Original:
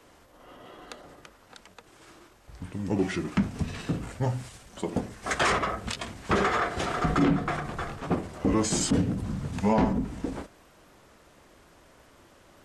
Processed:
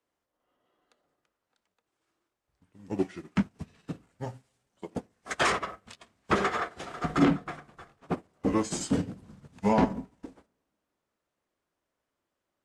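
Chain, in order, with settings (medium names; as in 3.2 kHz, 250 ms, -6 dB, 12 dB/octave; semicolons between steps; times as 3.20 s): bass shelf 94 Hz -9 dB; on a send at -16 dB: reverberation RT60 1.7 s, pre-delay 12 ms; on the sum: upward expansion 2.5:1, over -41 dBFS; trim +3.5 dB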